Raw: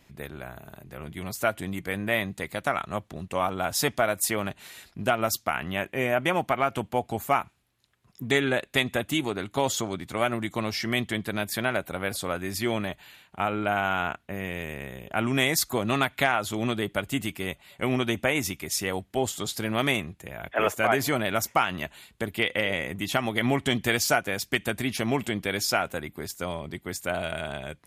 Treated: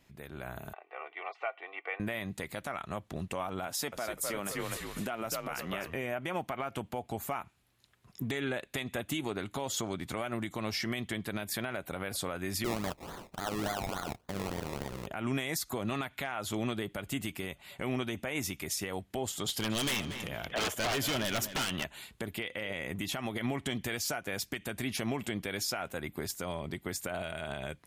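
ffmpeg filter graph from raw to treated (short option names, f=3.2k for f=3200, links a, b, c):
-filter_complex "[0:a]asettb=1/sr,asplit=3[a][b][c];[a]atrim=end=0.734[d];[b]atrim=start=0.73:end=2,asetpts=PTS-STARTPTS,afade=t=in:d=0.004:c=qsin,afade=t=out:st=1.266:d=0.004:c=qsin,asuperpass=centerf=1200:order=8:qfactor=0.57,bandreject=f=1.6k:w=5.1,aecho=1:1:2.6:0.62,atrim=end_sample=56007[e];[c]atrim=start=1.996[f];[d][e]acrossfade=d=0.004:c1=hsin:c2=qsin[g];[g][f]acrossfade=d=0.004:c1=qsin:c2=hsin,asettb=1/sr,asplit=3[h][i][j];[h]atrim=end=3.674[k];[i]atrim=start=3.67:end=5.95,asetpts=PTS-STARTPTS,afade=t=in:d=0.004:c=qsin,afade=t=out:st=2.276:d=0.004:c=qsin,highpass=170,asplit=5[l][m][n][o][p];[m]adelay=250,afreqshift=-81,volume=-6.5dB[q];[n]adelay=500,afreqshift=-162,volume=-16.1dB[r];[o]adelay=750,afreqshift=-243,volume=-25.8dB[s];[p]adelay=1000,afreqshift=-324,volume=-35.4dB[t];[l][q][r][s][t]amix=inputs=5:normalize=0,atrim=end_sample=100548[u];[j]atrim=start=5.946[v];[k][u]acrossfade=d=0.004:c1=hsin:c2=qsin[w];[w][v]acrossfade=d=0.004:c1=qsin:c2=hsin,asettb=1/sr,asplit=3[x][y][z];[x]atrim=end=12.644[aa];[y]atrim=start=12.64:end=15.07,asetpts=PTS-STARTPTS,afade=t=in:d=0.004:c=qsin,afade=t=out:st=2.426:d=0.004:c=qsin,equalizer=f=5k:t=o:w=1.4:g=11,acrusher=samples=23:mix=1:aa=0.000001:lfo=1:lforange=13.8:lforate=3.5[ab];[z]atrim=start=15.066[ac];[aa][ab]acrossfade=d=0.004:c1=hsin:c2=qsin[ad];[ad][ac]acrossfade=d=0.004:c1=qsin:c2=hsin,asettb=1/sr,asplit=3[ae][af][ag];[ae]atrim=end=19.464[ah];[af]atrim=start=19.46:end=21.84,asetpts=PTS-STARTPTS,afade=t=in:d=0.004:c=qsin,afade=t=out:st=2.376:d=0.004:c=qsin,equalizer=f=3.1k:t=o:w=0.22:g=14.5,aeval=exprs='0.0841*(abs(mod(val(0)/0.0841+3,4)-2)-1)':c=same,asplit=2[ai][aj];[aj]adelay=234,lowpass=f=4k:p=1,volume=-12.5dB,asplit=2[ak][al];[al]adelay=234,lowpass=f=4k:p=1,volume=0.36,asplit=2[am][an];[an]adelay=234,lowpass=f=4k:p=1,volume=0.36,asplit=2[ao][ap];[ap]adelay=234,lowpass=f=4k:p=1,volume=0.36[aq];[ai][ak][am][ao][aq]amix=inputs=5:normalize=0,atrim=end_sample=104958[ar];[ag]atrim=start=21.836[as];[ah][ar]acrossfade=d=0.004:c1=hsin:c2=qsin[at];[at][as]acrossfade=d=0.004:c1=qsin:c2=hsin,acompressor=threshold=-36dB:ratio=2,alimiter=level_in=1.5dB:limit=-24dB:level=0:latency=1:release=73,volume=-1.5dB,dynaudnorm=f=260:g=3:m=8.5dB,volume=-6.5dB"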